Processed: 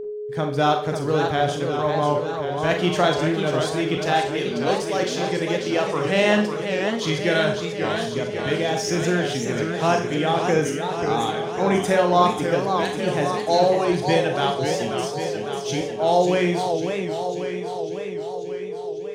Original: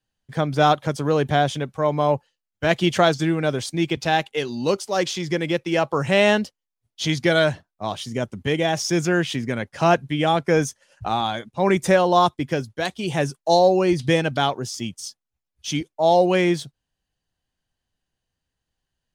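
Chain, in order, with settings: whistle 420 Hz -25 dBFS; Schroeder reverb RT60 0.39 s, combs from 30 ms, DRR 4 dB; modulated delay 545 ms, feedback 66%, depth 181 cents, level -6.5 dB; trim -3.5 dB

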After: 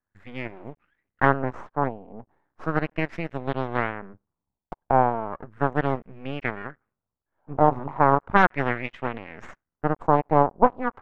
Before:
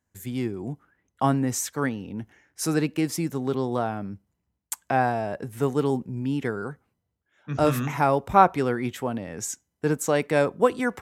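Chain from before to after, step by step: Chebyshev shaper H 3 -28 dB, 5 -42 dB, 6 -7 dB, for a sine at -2 dBFS; half-wave rectifier; LFO low-pass sine 0.36 Hz 830–2400 Hz; trim -4.5 dB

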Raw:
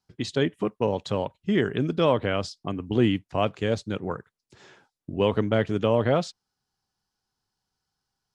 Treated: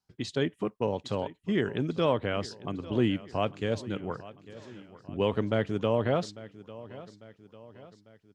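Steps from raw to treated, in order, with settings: feedback delay 848 ms, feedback 50%, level -17.5 dB; trim -4.5 dB

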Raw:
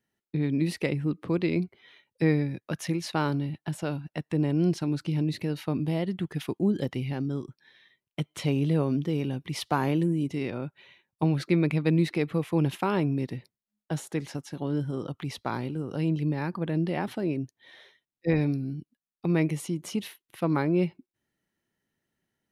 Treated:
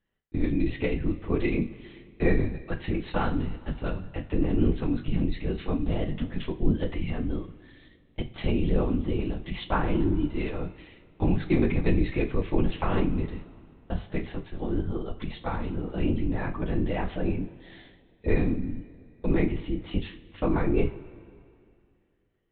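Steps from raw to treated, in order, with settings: LPC vocoder at 8 kHz whisper; two-slope reverb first 0.29 s, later 2.4 s, from -18 dB, DRR 5 dB

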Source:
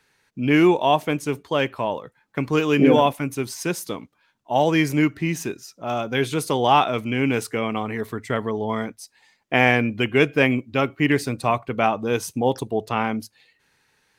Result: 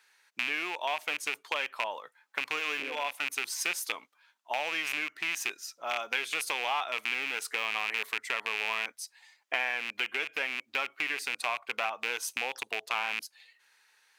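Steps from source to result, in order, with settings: rattle on loud lows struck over -28 dBFS, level -13 dBFS; compression 6:1, threshold -24 dBFS, peak gain reduction 13 dB; high-pass 940 Hz 12 dB/octave

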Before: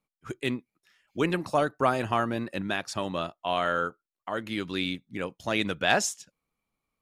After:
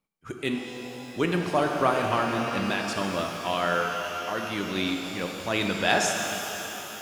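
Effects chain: pitch-shifted reverb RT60 3.8 s, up +12 st, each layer -8 dB, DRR 2 dB

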